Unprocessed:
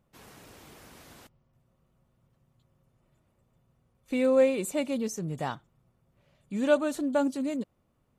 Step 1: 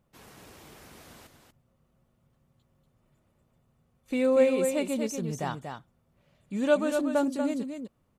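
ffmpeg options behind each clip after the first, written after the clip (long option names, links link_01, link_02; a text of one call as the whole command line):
ffmpeg -i in.wav -af "aecho=1:1:238:0.473" out.wav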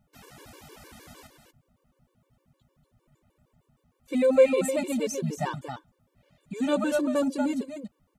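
ffmpeg -i in.wav -af "afftfilt=real='re*gt(sin(2*PI*6.5*pts/sr)*(1-2*mod(floor(b*sr/1024/300),2)),0)':imag='im*gt(sin(2*PI*6.5*pts/sr)*(1-2*mod(floor(b*sr/1024/300),2)),0)':win_size=1024:overlap=0.75,volume=5dB" out.wav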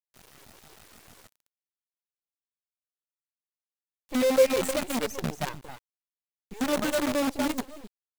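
ffmpeg -i in.wav -af "acrusher=bits=5:dc=4:mix=0:aa=0.000001,volume=-2dB" out.wav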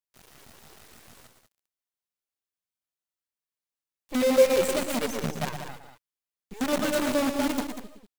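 ffmpeg -i in.wav -af "aecho=1:1:116|191:0.376|0.335" out.wav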